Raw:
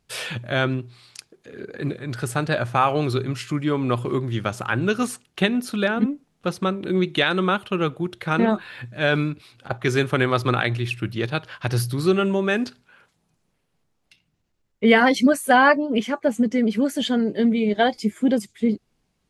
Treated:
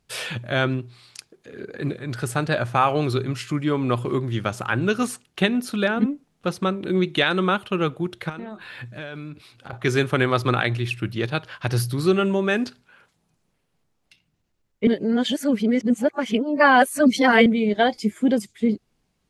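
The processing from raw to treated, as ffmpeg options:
-filter_complex "[0:a]asettb=1/sr,asplit=3[s0][s1][s2];[s0]atrim=end=8.294[s3];[s1]atrim=start=8.29:end=9.73,asetpts=PTS-STARTPTS,afade=t=in:d=0.004:c=qsin,afade=t=out:st=1.436:d=0.004:c=qsin,acompressor=threshold=0.0316:ratio=12:attack=3.2:release=140:knee=1:detection=peak[s4];[s2]atrim=start=9.726[s5];[s3][s4]acrossfade=d=0.004:c1=hsin:c2=qsin[s6];[s6][s5]acrossfade=d=0.004:c1=qsin:c2=hsin,asplit=3[s7][s8][s9];[s7]atrim=end=14.872[s10];[s8]atrim=start=14.868:end=17.462,asetpts=PTS-STARTPTS,areverse[s11];[s9]atrim=start=17.458[s12];[s10][s11]acrossfade=d=0.004:c1=hsin:c2=hsin[s13];[s13][s12]acrossfade=d=0.004:c1=hsin:c2=hsin"

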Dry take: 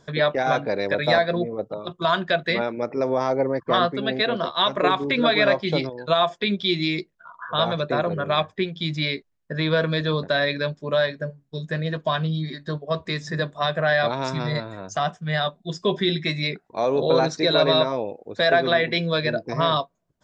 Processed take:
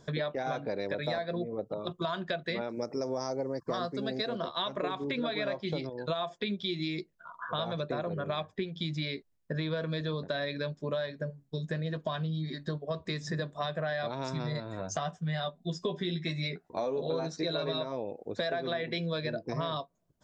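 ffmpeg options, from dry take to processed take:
-filter_complex "[0:a]asettb=1/sr,asplit=3[s0][s1][s2];[s0]atrim=end=2.694[s3];[s1]atrim=start=2.69:end=4.36,asetpts=PTS-STARTPTS,afade=t=in:d=0.004:c=qsin,afade=t=out:st=1.666:d=0.004:c=qsin,highshelf=f=4100:t=q:w=3:g=8.5[s4];[s2]atrim=start=4.356[s5];[s3][s4]acrossfade=d=0.004:c1=hsin:c2=qsin[s6];[s6][s5]acrossfade=d=0.004:c1=qsin:c2=hsin,asettb=1/sr,asplit=3[s7][s8][s9];[s7]atrim=end=14.784[s10];[s8]atrim=start=14.78:end=17.78,asetpts=PTS-STARTPTS,afade=t=in:d=0.004:c=qsin,afade=t=out:st=2.996:d=0.004:c=qsin,asplit=2[s11][s12];[s12]adelay=12,volume=0.531[s13];[s11][s13]amix=inputs=2:normalize=0,atrim=end_sample=132300[s14];[s9]atrim=start=17.776[s15];[s10][s14]acrossfade=d=0.004:c1=hsin:c2=qsin[s16];[s16][s15]acrossfade=d=0.004:c1=qsin:c2=hsin,equalizer=f=1800:t=o:w=2.5:g=-4.5,acompressor=threshold=0.0282:ratio=5"

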